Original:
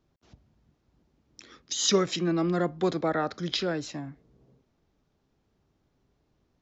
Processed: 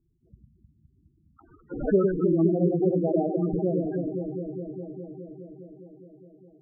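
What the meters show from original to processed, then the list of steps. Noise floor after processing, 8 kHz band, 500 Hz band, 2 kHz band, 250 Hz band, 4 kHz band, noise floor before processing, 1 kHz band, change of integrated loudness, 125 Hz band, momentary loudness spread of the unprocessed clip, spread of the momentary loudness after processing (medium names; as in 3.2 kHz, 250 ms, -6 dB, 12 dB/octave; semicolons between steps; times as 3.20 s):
-65 dBFS, no reading, +4.5 dB, under -10 dB, +5.5 dB, under -40 dB, -73 dBFS, -5.0 dB, +2.0 dB, +5.5 dB, 12 LU, 19 LU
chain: sample-and-hold 13×; echo whose repeats swap between lows and highs 103 ms, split 950 Hz, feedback 89%, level -3.5 dB; loudest bins only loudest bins 8; trim +2.5 dB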